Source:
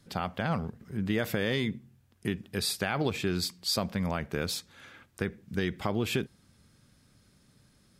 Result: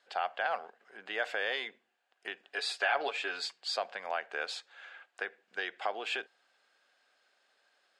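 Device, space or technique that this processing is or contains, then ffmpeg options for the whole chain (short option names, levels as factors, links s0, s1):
phone speaker on a table: -filter_complex "[0:a]asettb=1/sr,asplit=3[s0][s1][s2];[s0]atrim=end=2.474[s3];[s1]atrim=start=2.47:end=3.53,asetpts=PTS-STARTPTS,afade=t=in:d=0.004:c=qsin,afade=t=out:st=1.056:d=0.004:c=qsin,aecho=1:1:7.1:0.71,atrim=end_sample=46746[s4];[s2]atrim=start=3.526[s5];[s3][s4]acrossfade=d=0.004:c1=hsin:c2=qsin[s6];[s6][s5]acrossfade=d=0.004:c1=qsin:c2=hsin,highpass=f=490:w=0.5412,highpass=f=490:w=1.3066,equalizer=f=740:t=q:w=4:g=9,equalizer=f=1600:t=q:w=4:g=8,equalizer=f=2800:t=q:w=4:g=6,equalizer=f=5800:t=q:w=4:g=-8,lowpass=f=7000:w=0.5412,lowpass=f=7000:w=1.3066,volume=0.631"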